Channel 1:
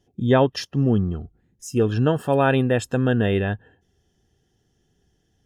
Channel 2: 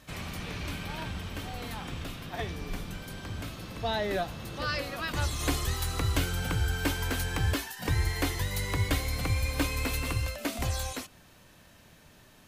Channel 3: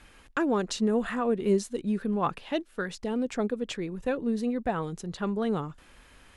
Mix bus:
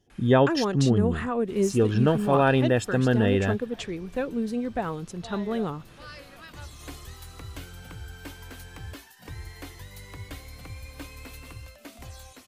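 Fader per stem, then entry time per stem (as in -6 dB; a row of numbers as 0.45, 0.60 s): -2.0, -12.0, 0.0 dB; 0.00, 1.40, 0.10 s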